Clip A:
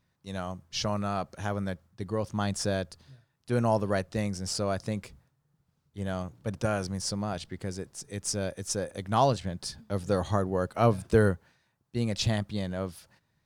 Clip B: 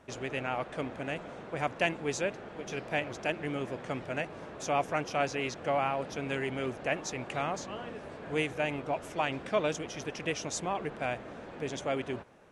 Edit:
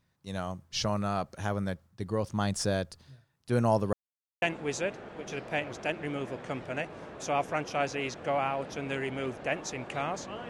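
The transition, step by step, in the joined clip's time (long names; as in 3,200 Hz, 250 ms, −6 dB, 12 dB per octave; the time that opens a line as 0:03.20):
clip A
0:03.93–0:04.42: silence
0:04.42: continue with clip B from 0:01.82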